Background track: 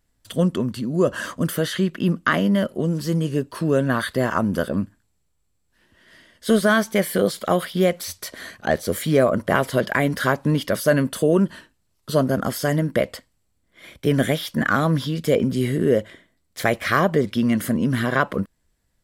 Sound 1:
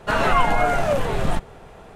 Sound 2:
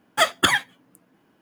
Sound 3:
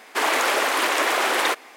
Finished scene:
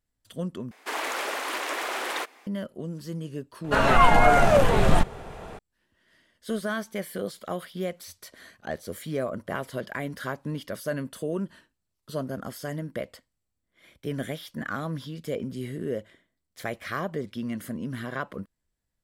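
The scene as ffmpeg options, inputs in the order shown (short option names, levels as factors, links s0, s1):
-filter_complex "[0:a]volume=0.237[s0];[1:a]dynaudnorm=f=240:g=3:m=1.88[s1];[s0]asplit=2[s2][s3];[s2]atrim=end=0.714[s4];[3:a]atrim=end=1.76,asetpts=PTS-STARTPTS,volume=0.335[s5];[s3]atrim=start=2.466[s6];[s1]atrim=end=1.95,asetpts=PTS-STARTPTS,volume=0.841,afade=t=in:d=0.004:c=hsin,afade=t=out:st=1.946:d=0.004:c=hsin,adelay=3640[s7];[s4][s5]acrossfade=d=0.004:c1=hsin:c2=hsin[s8];[s8][s6]acrossfade=d=0.004:c1=hsin:c2=hsin[s9];[s9][s7]amix=inputs=2:normalize=0"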